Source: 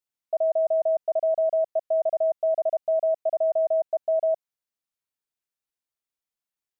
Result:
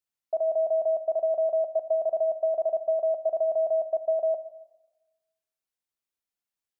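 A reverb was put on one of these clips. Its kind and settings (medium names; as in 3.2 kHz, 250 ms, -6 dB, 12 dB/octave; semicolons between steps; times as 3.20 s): plate-style reverb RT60 1.1 s, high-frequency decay 1×, pre-delay 0 ms, DRR 10.5 dB; trim -1.5 dB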